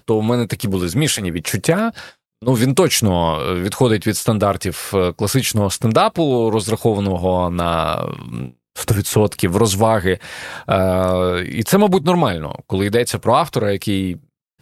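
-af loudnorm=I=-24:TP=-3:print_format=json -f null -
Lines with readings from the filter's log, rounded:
"input_i" : "-17.6",
"input_tp" : "-1.8",
"input_lra" : "1.3",
"input_thresh" : "-27.9",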